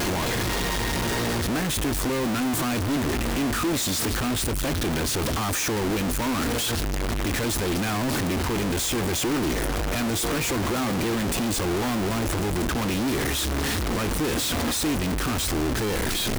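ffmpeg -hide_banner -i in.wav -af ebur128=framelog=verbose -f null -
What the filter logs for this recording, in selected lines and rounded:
Integrated loudness:
  I:         -24.9 LUFS
  Threshold: -34.9 LUFS
Loudness range:
  LRA:         0.5 LU
  Threshold: -44.9 LUFS
  LRA low:   -25.2 LUFS
  LRA high:  -24.7 LUFS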